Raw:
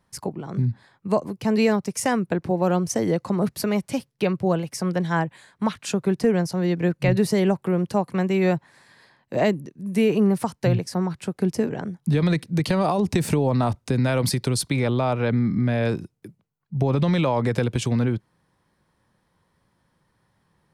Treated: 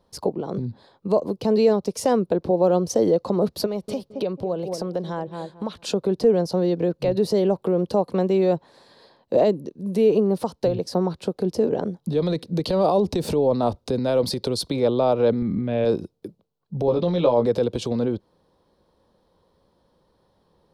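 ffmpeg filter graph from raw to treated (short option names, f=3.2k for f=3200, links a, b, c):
-filter_complex "[0:a]asettb=1/sr,asplit=3[a][b][c];[a]atrim=end=3.664[d];[b]atrim=start=3.66:end=5.84,asetpts=PTS-STARTPTS,afade=t=in:d=0.004:c=qsin,afade=t=out:st=2.176:d=0.004:c=qsin,asplit=2[e][f];[f]adelay=220,lowpass=f=1.2k:p=1,volume=-13.5dB,asplit=2[g][h];[h]adelay=220,lowpass=f=1.2k:p=1,volume=0.24,asplit=2[i][j];[j]adelay=220,lowpass=f=1.2k:p=1,volume=0.24[k];[e][g][i][k]amix=inputs=4:normalize=0,atrim=end_sample=96138,acompressor=threshold=-29dB:ratio=5:attack=3.2:release=140:knee=1:detection=peak[l];[c]atrim=start=5.836[m];[d][l]acrossfade=d=0.004:c1=hsin:c2=qsin[n];[n][m]acrossfade=d=0.004:c1=qsin:c2=hsin,asettb=1/sr,asplit=3[o][p][q];[o]atrim=end=15.424[r];[p]atrim=start=15.42:end=15.85,asetpts=PTS-STARTPTS,afade=t=in:d=0.004:c=qsin,afade=t=out:st=0.426:d=0.004:c=qsin,lowpass=f=2.7k:t=q:w=2.6,lowshelf=f=170:g=8[s];[q]atrim=start=15.846[t];[r][s]acrossfade=d=0.004:c1=hsin:c2=qsin[u];[u][t]acrossfade=d=0.004:c1=qsin:c2=hsin,asettb=1/sr,asplit=3[v][w][x];[v]atrim=end=16.864[y];[w]atrim=start=16.86:end=17.46,asetpts=PTS-STARTPTS,afade=t=in:d=0.004:c=qsin,afade=t=out:st=0.596:d=0.004:c=qsin,lowpass=f=6.2k:w=0.5412,lowpass=f=6.2k:w=1.3066,asplit=2[z][aa];[aa]adelay=17,volume=-4dB[ab];[z][ab]amix=inputs=2:normalize=0,atrim=end_sample=26460[ac];[x]atrim=start=17.456[ad];[y][ac]acrossfade=d=0.004:c1=hsin:c2=qsin[ae];[ae][ad]acrossfade=d=0.004:c1=qsin:c2=hsin,lowshelf=f=350:g=8.5,alimiter=limit=-13dB:level=0:latency=1:release=124,equalizer=f=125:t=o:w=1:g=-10,equalizer=f=500:t=o:w=1:g=11,equalizer=f=1k:t=o:w=1:g=3,equalizer=f=2k:t=o:w=1:g=-9,equalizer=f=4k:t=o:w=1:g=10,equalizer=f=8k:t=o:w=1:g=-5,volume=-2dB"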